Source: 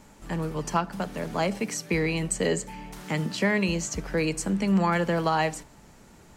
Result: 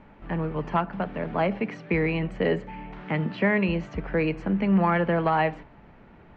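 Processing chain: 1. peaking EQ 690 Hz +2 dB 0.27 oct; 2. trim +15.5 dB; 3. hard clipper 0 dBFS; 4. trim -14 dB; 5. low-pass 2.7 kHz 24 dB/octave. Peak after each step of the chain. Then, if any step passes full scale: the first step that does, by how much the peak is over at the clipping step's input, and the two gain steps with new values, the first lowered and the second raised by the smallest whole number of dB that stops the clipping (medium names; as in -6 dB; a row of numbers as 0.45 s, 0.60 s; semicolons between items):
-10.0 dBFS, +5.5 dBFS, 0.0 dBFS, -14.0 dBFS, -13.0 dBFS; step 2, 5.5 dB; step 2 +9.5 dB, step 4 -8 dB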